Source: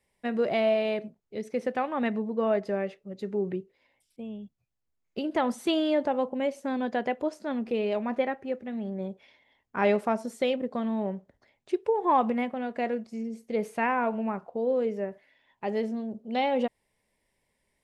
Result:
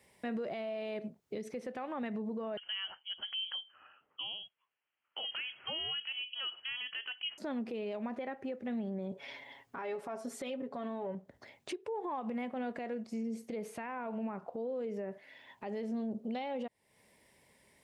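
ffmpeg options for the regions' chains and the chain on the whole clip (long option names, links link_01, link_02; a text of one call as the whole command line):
ffmpeg -i in.wav -filter_complex "[0:a]asettb=1/sr,asplit=3[link_01][link_02][link_03];[link_01]atrim=end=2.574[link_04];[link_02]atrim=start=2.57:end=7.38,asetpts=PTS-STARTPTS,afade=type=in:duration=0.004:curve=qsin,afade=type=out:start_time=4.806:duration=0.004:curve=qsin,highpass=620,lowpass=frequency=3000:width_type=q:width=0.5098,lowpass=frequency=3000:width_type=q:width=0.6013,lowpass=frequency=3000:width_type=q:width=0.9,lowpass=frequency=3000:width_type=q:width=2.563,afreqshift=-3500[link_05];[link_03]atrim=start=7.376[link_06];[link_04][link_05]acrossfade=duration=0.004:curve1=hsin:curve2=qsin[link_07];[link_07][link_06]acrossfade=duration=0.004:curve1=qsin:curve2=hsin,asettb=1/sr,asplit=3[link_08][link_09][link_10];[link_08]atrim=end=9.114[link_11];[link_09]atrim=start=9.11:end=11.15,asetpts=PTS-STARTPTS,afade=type=in:duration=0.004:curve=qsin,afade=type=out:start_time=2.036:duration=0.004:curve=qsin,equalizer=frequency=1000:width=0.51:gain=4,aecho=1:1:7.2:0.66,atrim=end_sample=89964[link_12];[link_10]atrim=start=11.146[link_13];[link_11][link_12]acrossfade=duration=0.004:curve1=hsin:curve2=qsin[link_14];[link_14][link_13]acrossfade=duration=0.004:curve1=qsin:curve2=hsin,highpass=84,acompressor=threshold=-44dB:ratio=4,alimiter=level_in=17dB:limit=-24dB:level=0:latency=1:release=70,volume=-17dB,volume=10dB" out.wav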